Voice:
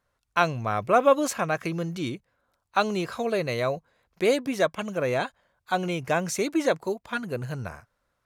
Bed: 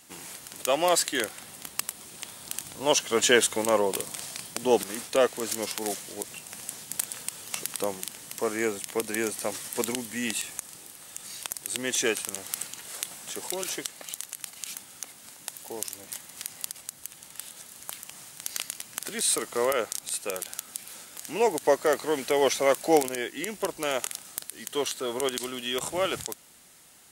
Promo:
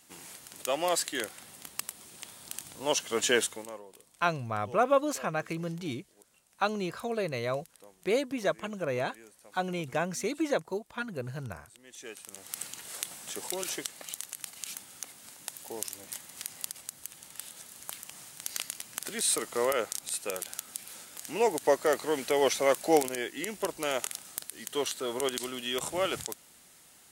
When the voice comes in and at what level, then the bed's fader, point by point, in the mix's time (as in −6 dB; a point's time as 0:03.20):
3.85 s, −5.5 dB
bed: 0:03.42 −5.5 dB
0:03.84 −25 dB
0:11.83 −25 dB
0:12.67 −2.5 dB